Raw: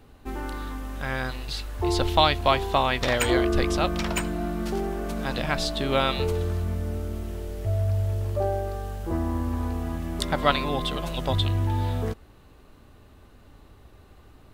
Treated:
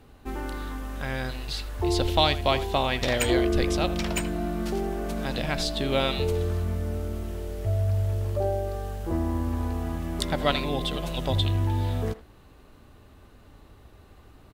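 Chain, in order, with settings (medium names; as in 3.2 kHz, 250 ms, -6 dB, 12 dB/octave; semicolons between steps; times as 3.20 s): dynamic bell 1.2 kHz, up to -7 dB, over -39 dBFS, Q 1.3; Chebyshev shaper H 6 -37 dB, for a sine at -5.5 dBFS; speakerphone echo 80 ms, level -14 dB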